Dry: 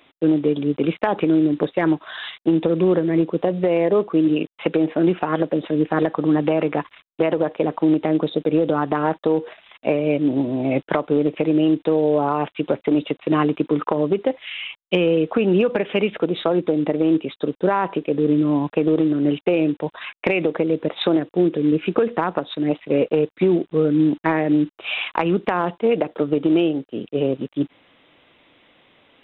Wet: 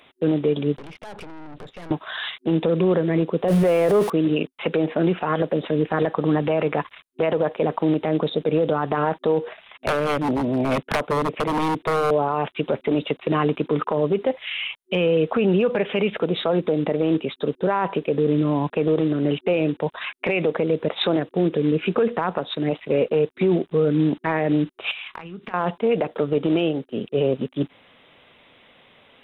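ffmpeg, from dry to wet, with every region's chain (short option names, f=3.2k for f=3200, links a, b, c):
-filter_complex "[0:a]asettb=1/sr,asplit=3[a][b][c];[a]atrim=end=0.784[d];[b]atrim=start=0.78:end=1.91,asetpts=PTS-STARTPTS,afade=t=in:d=0.004:c=qsin,afade=t=out:st=1.126:d=0.004:c=qsin,asubboost=boost=6.5:cutoff=210,acompressor=threshold=-29dB:ratio=3:attack=3.2:release=140:knee=1:detection=peak,aeval=exprs='(tanh(70.8*val(0)+0.7)-tanh(0.7))/70.8':c=same[e];[c]atrim=start=1.906[f];[d][e]acrossfade=d=0.004:c1=hsin:c2=qsin[g];[g][f]acrossfade=d=0.004:c1=qsin:c2=hsin,asettb=1/sr,asplit=3[h][i][j];[h]atrim=end=3.484[k];[i]atrim=start=3.48:end=4.1,asetpts=PTS-STARTPTS,afade=t=in:d=0.004:c=qsin,afade=t=out:st=0.616:d=0.004:c=qsin,aeval=exprs='val(0)+0.5*0.0224*sgn(val(0))':c=same,acontrast=46[l];[j]atrim=start=4.096[m];[k][l]acrossfade=d=0.004:c1=hsin:c2=qsin[n];[n][m]acrossfade=d=0.004:c1=qsin:c2=hsin,asettb=1/sr,asplit=3[o][p][q];[o]atrim=end=9.434[r];[p]atrim=start=9.43:end=12.11,asetpts=PTS-STARTPTS,afade=t=in:d=0.004:c=qsin,afade=t=out:st=2.676:d=0.004:c=qsin,acrossover=split=3400[s][t];[t]acompressor=threshold=-60dB:ratio=4:attack=1:release=60[u];[s][u]amix=inputs=2:normalize=0,aeval=exprs='0.15*(abs(mod(val(0)/0.15+3,4)-2)-1)':c=same[v];[q]atrim=start=12.106[w];[r][v]acrossfade=d=0.004:c1=hsin:c2=qsin[x];[x][w]acrossfade=d=0.004:c1=qsin:c2=hsin,asettb=1/sr,asplit=3[y][z][aa];[y]atrim=end=24.914[ab];[z]atrim=start=24.91:end=25.54,asetpts=PTS-STARTPTS,afade=t=in:d=0.004:c=qsin,afade=t=out:st=0.626:d=0.004:c=qsin,equalizer=f=590:w=1.2:g=-10,acompressor=threshold=-33dB:ratio=20:attack=3.2:release=140:knee=1:detection=peak,asplit=2[ac][ad];[ad]adelay=26,volume=-13.5dB[ae];[ac][ae]amix=inputs=2:normalize=0,atrim=end_sample=27783[af];[aa]atrim=start=25.536[ag];[ab][af]acrossfade=d=0.004:c1=hsin:c2=qsin[ah];[ah][ag]acrossfade=d=0.004:c1=qsin:c2=hsin,superequalizer=6b=0.501:16b=2,alimiter=limit=-14dB:level=0:latency=1:release=16,volume=2.5dB"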